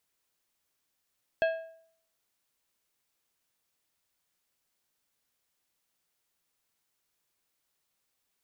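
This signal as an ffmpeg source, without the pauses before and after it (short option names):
-f lavfi -i "aevalsrc='0.0891*pow(10,-3*t/0.61)*sin(2*PI*653*t)+0.0398*pow(10,-3*t/0.463)*sin(2*PI*1632.5*t)+0.0178*pow(10,-3*t/0.402)*sin(2*PI*2612*t)+0.00794*pow(10,-3*t/0.376)*sin(2*PI*3265*t)+0.00355*pow(10,-3*t/0.348)*sin(2*PI*4244.5*t)':d=1.55:s=44100"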